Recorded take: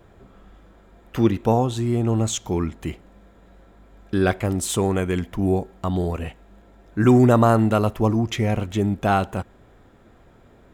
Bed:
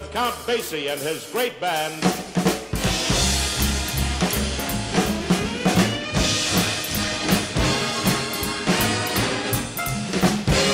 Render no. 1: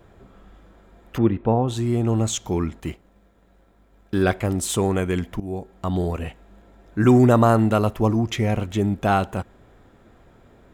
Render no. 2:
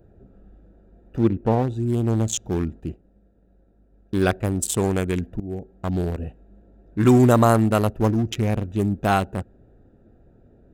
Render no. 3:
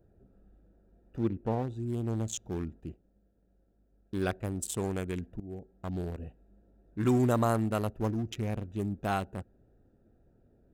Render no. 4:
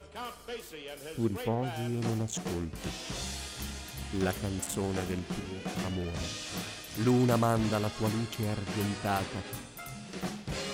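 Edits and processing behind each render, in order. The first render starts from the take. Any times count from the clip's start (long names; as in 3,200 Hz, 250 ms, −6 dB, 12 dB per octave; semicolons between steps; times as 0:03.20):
0:01.18–0:01.68: high-frequency loss of the air 480 metres; 0:02.80–0:04.23: mu-law and A-law mismatch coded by A; 0:05.40–0:05.93: fade in, from −16 dB
adaptive Wiener filter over 41 samples; high-shelf EQ 4,600 Hz +10 dB
level −11 dB
mix in bed −17.5 dB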